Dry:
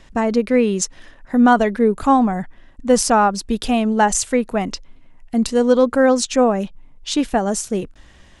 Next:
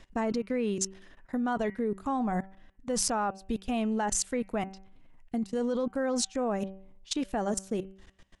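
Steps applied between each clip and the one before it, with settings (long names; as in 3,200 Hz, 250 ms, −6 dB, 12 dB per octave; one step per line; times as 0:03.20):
output level in coarse steps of 23 dB
hum removal 192 Hz, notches 16
level −5.5 dB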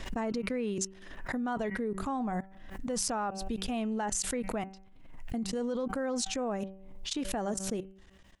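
background raised ahead of every attack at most 52 dB per second
level −3.5 dB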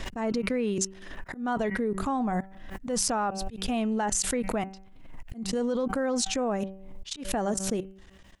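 volume swells 151 ms
level +5 dB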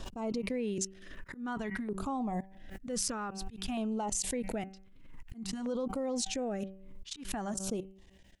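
auto-filter notch saw down 0.53 Hz 450–2,100 Hz
level −6 dB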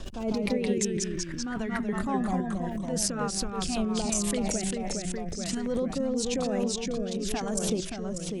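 delay with pitch and tempo change per echo 140 ms, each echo −1 semitone, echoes 3
rotating-speaker cabinet horn 5.5 Hz, later 1 Hz, at 0:04.65
level +6.5 dB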